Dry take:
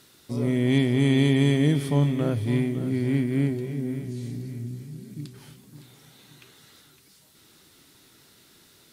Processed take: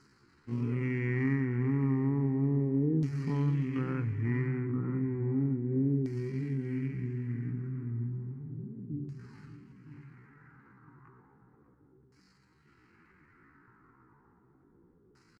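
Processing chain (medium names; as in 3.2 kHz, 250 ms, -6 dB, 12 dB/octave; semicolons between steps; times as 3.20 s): median filter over 15 samples; treble shelf 4.3 kHz +8.5 dB; hum notches 50/100/150/200/250 Hz; compression 2.5:1, threshold -28 dBFS, peak gain reduction 8 dB; static phaser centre 1.5 kHz, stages 4; tempo 0.58×; LFO low-pass saw down 0.33 Hz 440–5300 Hz; on a send: delay 590 ms -15.5 dB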